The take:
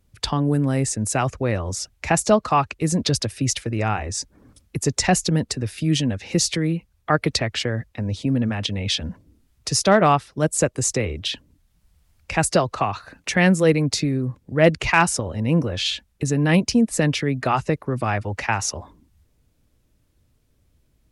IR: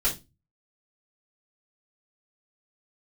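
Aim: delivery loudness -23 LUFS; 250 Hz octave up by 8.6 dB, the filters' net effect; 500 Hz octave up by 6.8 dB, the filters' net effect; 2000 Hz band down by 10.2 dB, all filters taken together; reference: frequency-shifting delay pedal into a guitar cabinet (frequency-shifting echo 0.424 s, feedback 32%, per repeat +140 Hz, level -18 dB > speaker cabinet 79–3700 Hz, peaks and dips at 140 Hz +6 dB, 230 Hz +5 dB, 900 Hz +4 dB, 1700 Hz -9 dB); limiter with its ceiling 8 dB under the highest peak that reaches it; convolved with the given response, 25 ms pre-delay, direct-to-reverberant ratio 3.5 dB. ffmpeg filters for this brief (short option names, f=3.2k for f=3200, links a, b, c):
-filter_complex "[0:a]equalizer=f=250:t=o:g=6,equalizer=f=500:t=o:g=7,equalizer=f=2k:t=o:g=-9,alimiter=limit=-6dB:level=0:latency=1,asplit=2[a][b];[1:a]atrim=start_sample=2205,adelay=25[c];[b][c]afir=irnorm=-1:irlink=0,volume=-12.5dB[d];[a][d]amix=inputs=2:normalize=0,asplit=4[e][f][g][h];[f]adelay=424,afreqshift=140,volume=-18dB[i];[g]adelay=848,afreqshift=280,volume=-27.9dB[j];[h]adelay=1272,afreqshift=420,volume=-37.8dB[k];[e][i][j][k]amix=inputs=4:normalize=0,highpass=79,equalizer=f=140:t=q:w=4:g=6,equalizer=f=230:t=q:w=4:g=5,equalizer=f=900:t=q:w=4:g=4,equalizer=f=1.7k:t=q:w=4:g=-9,lowpass=f=3.7k:w=0.5412,lowpass=f=3.7k:w=1.3066,volume=-7.5dB"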